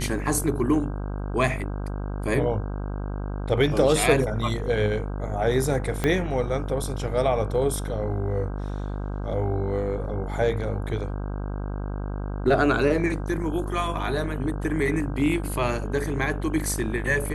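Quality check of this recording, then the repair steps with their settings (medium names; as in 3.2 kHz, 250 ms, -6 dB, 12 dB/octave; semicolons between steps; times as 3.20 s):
buzz 50 Hz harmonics 32 -30 dBFS
6.04 s: pop -10 dBFS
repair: de-click; de-hum 50 Hz, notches 32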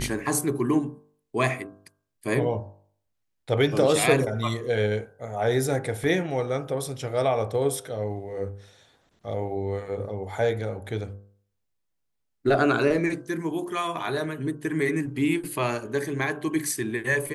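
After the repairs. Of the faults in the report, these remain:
6.04 s: pop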